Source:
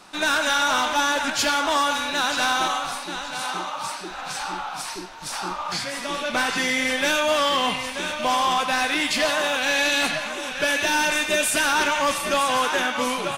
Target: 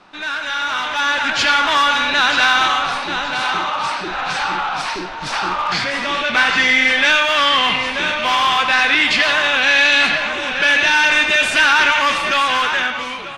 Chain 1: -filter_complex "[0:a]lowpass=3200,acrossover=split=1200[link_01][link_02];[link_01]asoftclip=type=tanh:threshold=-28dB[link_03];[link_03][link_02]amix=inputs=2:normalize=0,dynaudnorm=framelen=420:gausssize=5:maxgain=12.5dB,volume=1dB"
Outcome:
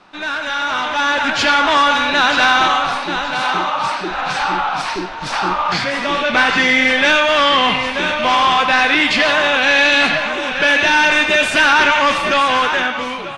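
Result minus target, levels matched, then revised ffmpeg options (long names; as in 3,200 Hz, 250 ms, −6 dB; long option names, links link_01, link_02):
soft clipping: distortion −5 dB
-filter_complex "[0:a]lowpass=3200,acrossover=split=1200[link_01][link_02];[link_01]asoftclip=type=tanh:threshold=-37.5dB[link_03];[link_03][link_02]amix=inputs=2:normalize=0,dynaudnorm=framelen=420:gausssize=5:maxgain=12.5dB,volume=1dB"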